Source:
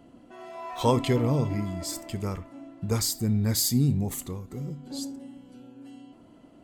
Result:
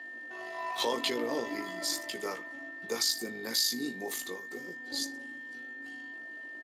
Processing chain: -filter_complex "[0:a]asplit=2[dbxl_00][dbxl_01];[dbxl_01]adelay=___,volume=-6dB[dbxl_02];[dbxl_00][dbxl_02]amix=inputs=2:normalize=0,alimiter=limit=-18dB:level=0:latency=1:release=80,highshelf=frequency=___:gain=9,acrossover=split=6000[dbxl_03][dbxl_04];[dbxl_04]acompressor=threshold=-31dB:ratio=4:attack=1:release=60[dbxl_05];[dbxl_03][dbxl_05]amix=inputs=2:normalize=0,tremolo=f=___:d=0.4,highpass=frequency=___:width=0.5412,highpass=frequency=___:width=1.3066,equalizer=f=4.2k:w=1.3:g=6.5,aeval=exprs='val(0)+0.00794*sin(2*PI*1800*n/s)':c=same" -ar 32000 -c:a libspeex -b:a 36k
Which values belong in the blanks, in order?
17, 6.6k, 51, 310, 310